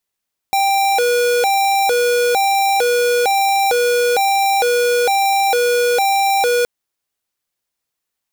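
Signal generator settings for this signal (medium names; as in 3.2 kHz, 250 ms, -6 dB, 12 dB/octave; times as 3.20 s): siren hi-lo 484–787 Hz 1.1 per s square -15 dBFS 6.12 s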